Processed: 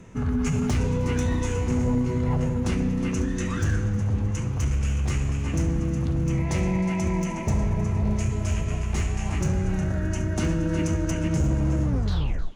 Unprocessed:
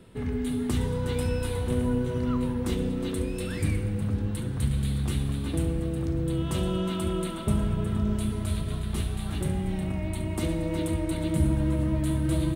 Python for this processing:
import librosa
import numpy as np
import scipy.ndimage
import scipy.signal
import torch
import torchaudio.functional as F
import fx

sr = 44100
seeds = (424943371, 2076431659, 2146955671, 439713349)

p1 = fx.tape_stop_end(x, sr, length_s=0.71)
p2 = fx.rider(p1, sr, range_db=10, speed_s=2.0)
p3 = p1 + (p2 * 10.0 ** (2.5 / 20.0))
p4 = np.clip(p3, -10.0 ** (-14.5 / 20.0), 10.0 ** (-14.5 / 20.0))
p5 = fx.formant_shift(p4, sr, semitones=-6)
p6 = fx.peak_eq(p5, sr, hz=630.0, db=3.0, octaves=2.5)
p7 = p6 + fx.echo_thinned(p6, sr, ms=312, feedback_pct=70, hz=950.0, wet_db=-18.5, dry=0)
y = p7 * 10.0 ** (-4.0 / 20.0)